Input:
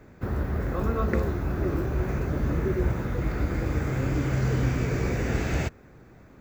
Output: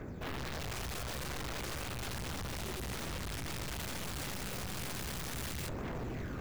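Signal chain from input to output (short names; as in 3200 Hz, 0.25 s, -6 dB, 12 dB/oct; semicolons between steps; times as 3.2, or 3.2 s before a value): AGC gain up to 9.5 dB; phaser 0.34 Hz, delay 2.2 ms, feedback 46%; tube stage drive 25 dB, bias 0.55; wavefolder -38.5 dBFS; gain +4 dB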